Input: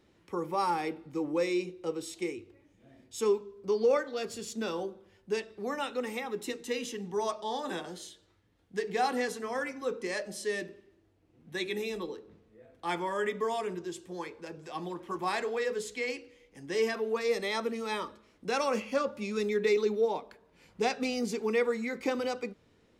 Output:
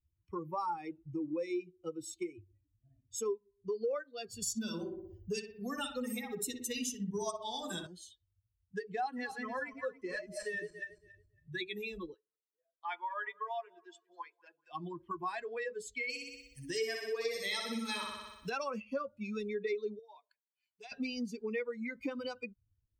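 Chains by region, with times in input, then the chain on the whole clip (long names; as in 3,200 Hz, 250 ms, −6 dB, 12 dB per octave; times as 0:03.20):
0:04.42–0:07.87: bass and treble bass +6 dB, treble +12 dB + feedback echo with a low-pass in the loop 60 ms, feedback 67%, low-pass 3,000 Hz, level −3.5 dB
0:09.04–0:11.63: feedback delay that plays each chunk backwards 139 ms, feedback 60%, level −5 dB + phase shifter 1.9 Hz, delay 1.9 ms, feedback 21% + high-shelf EQ 5,800 Hz −4 dB
0:12.14–0:14.71: high-pass filter 610 Hz + high-frequency loss of the air 88 metres + repeating echo 194 ms, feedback 53%, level −15.5 dB
0:16.09–0:18.50: high-shelf EQ 4,000 Hz +11.5 dB + flutter between parallel walls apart 10.5 metres, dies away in 1.4 s
0:19.99–0:20.92: high-pass filter 1,300 Hz 6 dB per octave + downward compressor, threshold −38 dBFS
whole clip: spectral dynamics exaggerated over time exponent 2; downward compressor 3 to 1, threshold −50 dBFS; level +11 dB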